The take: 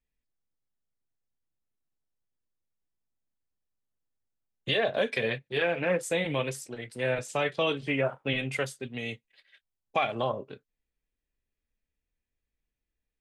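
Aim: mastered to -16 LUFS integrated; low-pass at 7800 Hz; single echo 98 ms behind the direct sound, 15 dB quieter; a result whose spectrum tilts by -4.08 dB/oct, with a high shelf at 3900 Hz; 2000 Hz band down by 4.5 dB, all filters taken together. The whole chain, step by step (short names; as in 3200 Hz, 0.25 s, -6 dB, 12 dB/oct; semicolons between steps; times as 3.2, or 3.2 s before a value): LPF 7800 Hz; bell 2000 Hz -3.5 dB; high shelf 3900 Hz -8 dB; echo 98 ms -15 dB; gain +15.5 dB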